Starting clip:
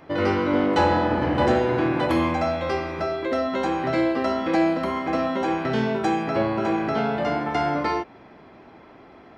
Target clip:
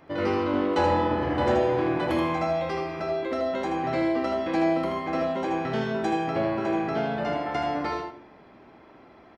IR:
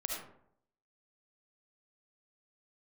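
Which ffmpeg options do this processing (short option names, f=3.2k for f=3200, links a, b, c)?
-filter_complex "[0:a]aecho=1:1:79:0.531,asplit=2[a][b];[1:a]atrim=start_sample=2205[c];[b][c]afir=irnorm=-1:irlink=0,volume=-9dB[d];[a][d]amix=inputs=2:normalize=0,volume=-7.5dB"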